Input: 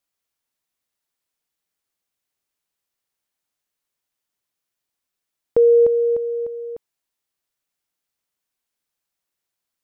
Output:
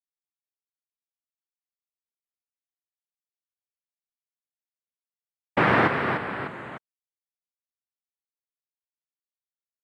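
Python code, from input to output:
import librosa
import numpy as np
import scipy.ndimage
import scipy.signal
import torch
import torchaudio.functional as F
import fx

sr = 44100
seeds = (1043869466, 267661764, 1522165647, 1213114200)

y = fx.formant_cascade(x, sr, vowel='e')
y = np.sign(y) * np.maximum(np.abs(y) - 10.0 ** (-55.5 / 20.0), 0.0)
y = fx.noise_vocoder(y, sr, seeds[0], bands=3)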